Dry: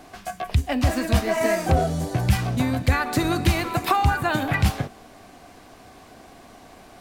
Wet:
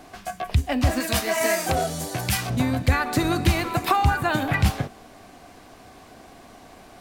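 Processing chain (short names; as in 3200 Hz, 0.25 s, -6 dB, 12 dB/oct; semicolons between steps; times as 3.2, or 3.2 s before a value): 1–2.5 tilt +2.5 dB/oct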